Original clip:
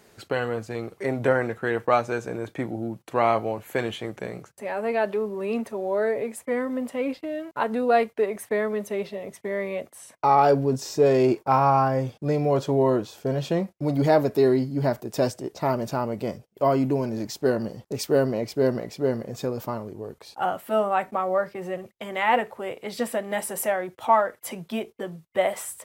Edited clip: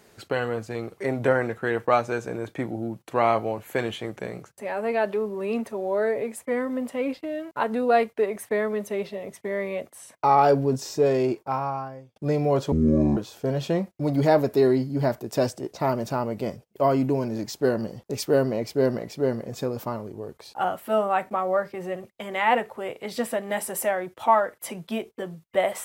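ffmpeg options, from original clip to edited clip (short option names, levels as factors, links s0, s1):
-filter_complex "[0:a]asplit=4[s0][s1][s2][s3];[s0]atrim=end=12.16,asetpts=PTS-STARTPTS,afade=t=out:st=10.76:d=1.4[s4];[s1]atrim=start=12.16:end=12.724,asetpts=PTS-STARTPTS,afade=t=in:d=0.004:c=hsin[s5];[s2]atrim=start=12.72:end=12.98,asetpts=PTS-STARTPTS,asetrate=25578,aresample=44100[s6];[s3]atrim=start=12.976[s7];[s4][s5]concat=n=2:v=0:a=1[s8];[s8][s6]acrossfade=d=0.004:c1=hsin:c2=hsin[s9];[s9][s7]acrossfade=d=0.004:c1=hsin:c2=hsin"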